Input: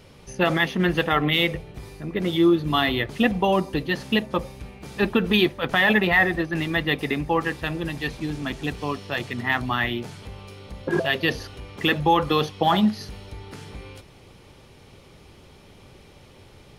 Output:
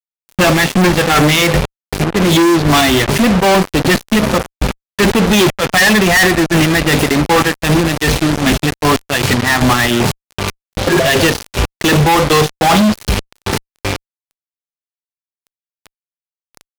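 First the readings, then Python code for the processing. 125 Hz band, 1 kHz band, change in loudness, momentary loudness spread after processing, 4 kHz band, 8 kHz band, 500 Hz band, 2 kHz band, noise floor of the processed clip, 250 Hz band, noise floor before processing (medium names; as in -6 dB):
+13.5 dB, +10.5 dB, +10.5 dB, 11 LU, +11.0 dB, +26.5 dB, +10.5 dB, +9.5 dB, under -85 dBFS, +11.0 dB, -50 dBFS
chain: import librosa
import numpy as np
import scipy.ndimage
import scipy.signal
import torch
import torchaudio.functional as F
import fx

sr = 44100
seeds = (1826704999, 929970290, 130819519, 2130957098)

y = fx.hpss(x, sr, part='harmonic', gain_db=4)
y = fx.chopper(y, sr, hz=2.6, depth_pct=65, duty_pct=30)
y = fx.fuzz(y, sr, gain_db=43.0, gate_db=-36.0)
y = y * librosa.db_to_amplitude(5.0)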